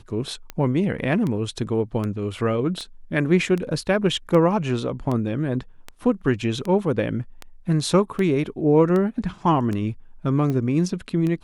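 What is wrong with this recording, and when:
scratch tick 78 rpm −16 dBFS

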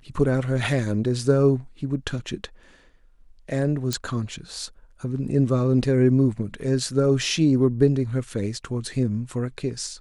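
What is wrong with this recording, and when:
0:03.93: click −10 dBFS

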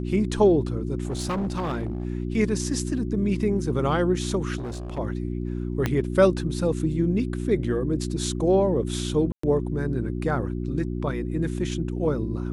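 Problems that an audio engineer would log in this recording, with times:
mains hum 60 Hz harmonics 6 −29 dBFS
0:01.05–0:02.05: clipping −23.5 dBFS
0:04.58–0:04.99: clipping −29 dBFS
0:05.86: click −10 dBFS
0:09.32–0:09.43: drop-out 114 ms

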